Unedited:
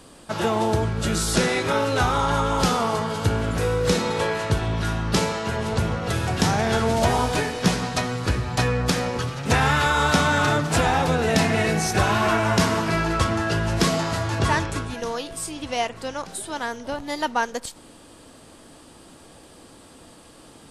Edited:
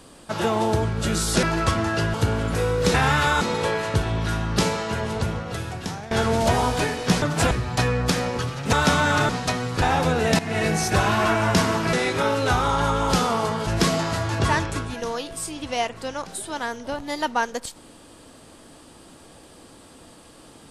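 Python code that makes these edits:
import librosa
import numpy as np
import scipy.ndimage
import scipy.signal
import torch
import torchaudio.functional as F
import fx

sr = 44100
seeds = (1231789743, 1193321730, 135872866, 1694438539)

y = fx.edit(x, sr, fx.swap(start_s=1.43, length_s=1.74, other_s=12.96, other_length_s=0.71),
    fx.fade_out_to(start_s=5.5, length_s=1.17, floor_db=-17.0),
    fx.swap(start_s=7.78, length_s=0.53, other_s=10.56, other_length_s=0.29),
    fx.move(start_s=9.53, length_s=0.47, to_s=3.97),
    fx.fade_in_from(start_s=11.42, length_s=0.26, floor_db=-15.0), tone=tone)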